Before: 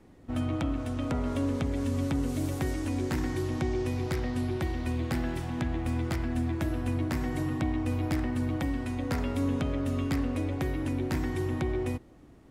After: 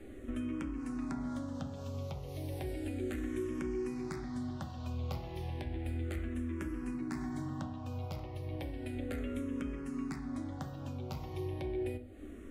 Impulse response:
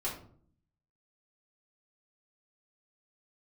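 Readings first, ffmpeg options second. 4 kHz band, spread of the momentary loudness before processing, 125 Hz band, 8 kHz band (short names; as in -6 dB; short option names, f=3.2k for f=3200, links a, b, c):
-10.0 dB, 2 LU, -9.5 dB, -10.5 dB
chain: -filter_complex "[0:a]acompressor=threshold=-44dB:ratio=5,asplit=2[a][b];[1:a]atrim=start_sample=2205,afade=t=out:st=0.21:d=0.01,atrim=end_sample=9702[c];[b][c]afir=irnorm=-1:irlink=0,volume=-6.5dB[d];[a][d]amix=inputs=2:normalize=0,asplit=2[e][f];[f]afreqshift=-0.33[g];[e][g]amix=inputs=2:normalize=1,volume=5dB"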